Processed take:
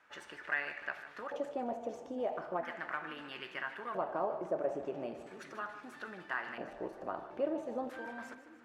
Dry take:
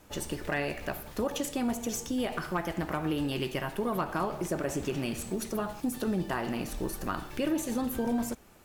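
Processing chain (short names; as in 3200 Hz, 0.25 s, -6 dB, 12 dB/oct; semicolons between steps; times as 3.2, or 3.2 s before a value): median filter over 3 samples; LFO band-pass square 0.38 Hz 630–1600 Hz; split-band echo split 350 Hz, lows 0.495 s, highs 0.151 s, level -13.5 dB; gain +2 dB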